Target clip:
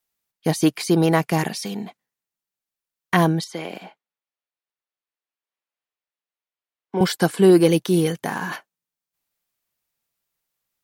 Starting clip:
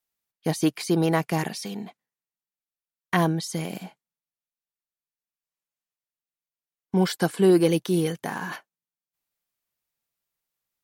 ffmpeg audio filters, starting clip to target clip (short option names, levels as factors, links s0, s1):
-filter_complex "[0:a]asettb=1/sr,asplit=3[s0][s1][s2];[s0]atrim=end=3.444[s3];[s1]atrim=start=3.44:end=7.01,asetpts=PTS-STARTPTS,afade=t=in:d=0.004:c=qsin,afade=t=out:st=3.566:d=0.004:c=qsin,acrossover=split=290 4100:gain=0.141 1 0.178[s4][s5][s6];[s4][s5][s6]amix=inputs=3:normalize=0[s7];[s2]atrim=start=7.006[s8];[s3][s7]acrossfade=d=0.004:c1=hsin:c2=qsin[s9];[s9][s8]acrossfade=d=0.004:c1=qsin:c2=hsin,volume=1.68"